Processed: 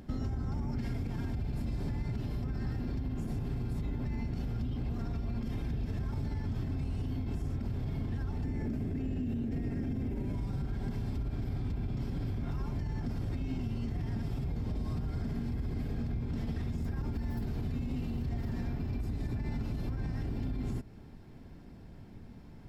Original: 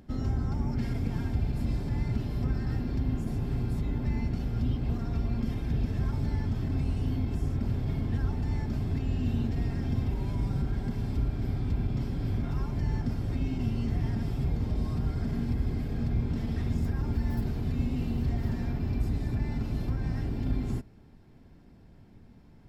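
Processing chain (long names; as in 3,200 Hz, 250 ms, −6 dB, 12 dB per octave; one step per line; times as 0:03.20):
0:08.44–0:10.35: graphic EQ with 10 bands 250 Hz +8 dB, 500 Hz +5 dB, 1,000 Hz −5 dB, 2,000 Hz +4 dB, 4,000 Hz −6 dB
brickwall limiter −25 dBFS, peak gain reduction 11 dB
downward compressor 4 to 1, threshold −36 dBFS, peak gain reduction 7 dB
level +4 dB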